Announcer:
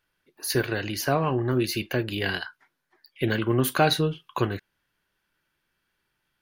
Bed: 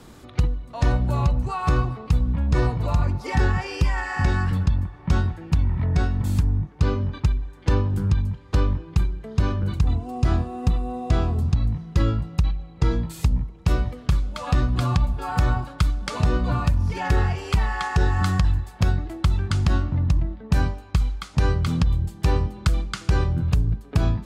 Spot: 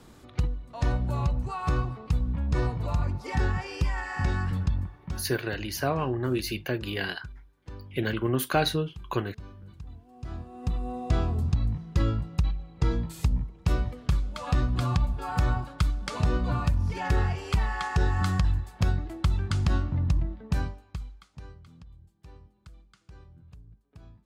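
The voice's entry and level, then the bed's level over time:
4.75 s, -3.5 dB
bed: 4.92 s -6 dB
5.33 s -22.5 dB
10.07 s -22.5 dB
10.87 s -4.5 dB
20.41 s -4.5 dB
21.69 s -29.5 dB

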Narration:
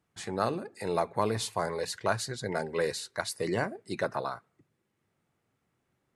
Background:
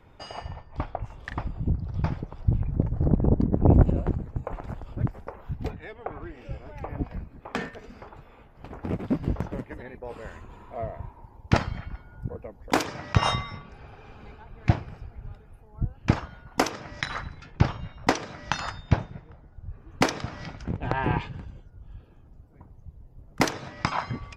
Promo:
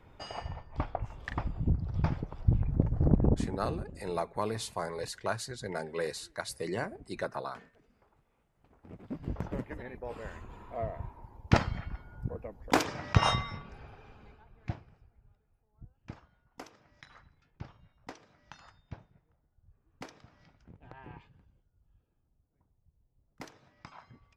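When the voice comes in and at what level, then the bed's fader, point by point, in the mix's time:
3.20 s, -4.5 dB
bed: 3.25 s -2.5 dB
3.78 s -23 dB
8.80 s -23 dB
9.54 s -2.5 dB
13.75 s -2.5 dB
15.29 s -23.5 dB

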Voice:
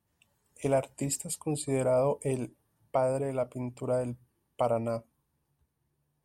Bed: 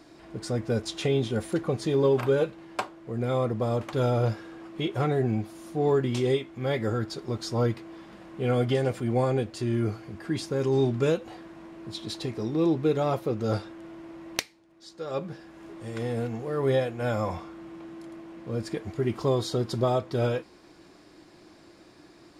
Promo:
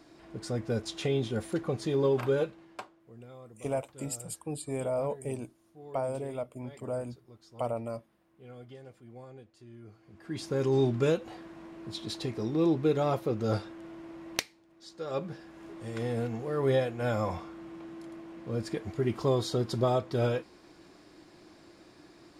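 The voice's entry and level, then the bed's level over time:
3.00 s, -5.0 dB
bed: 2.41 s -4 dB
3.37 s -23.5 dB
9.84 s -23.5 dB
10.51 s -2 dB

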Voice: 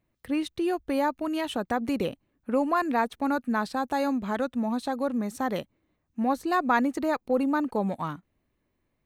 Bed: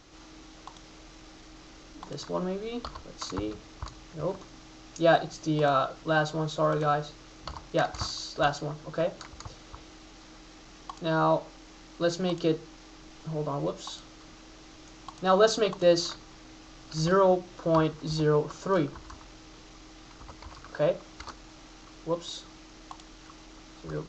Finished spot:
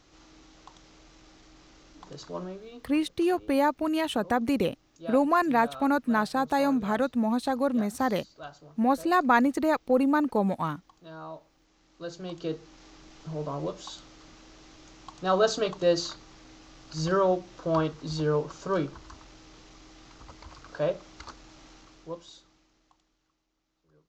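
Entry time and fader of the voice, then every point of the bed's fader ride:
2.60 s, +2.0 dB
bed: 2.38 s -5 dB
3.18 s -17.5 dB
11.55 s -17.5 dB
12.86 s -2 dB
21.73 s -2 dB
23.45 s -29.5 dB

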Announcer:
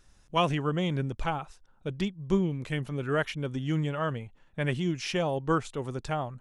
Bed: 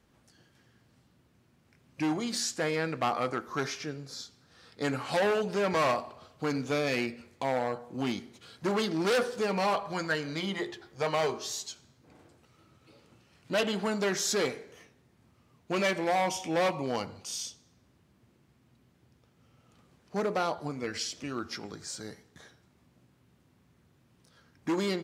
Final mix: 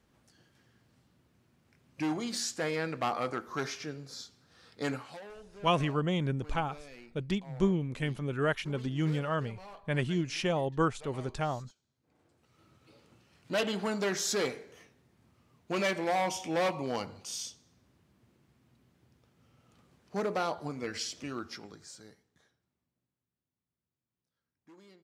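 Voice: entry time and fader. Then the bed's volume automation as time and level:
5.30 s, -1.5 dB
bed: 4.92 s -2.5 dB
5.22 s -21.5 dB
11.84 s -21.5 dB
12.65 s -2 dB
21.29 s -2 dB
23.34 s -27.5 dB

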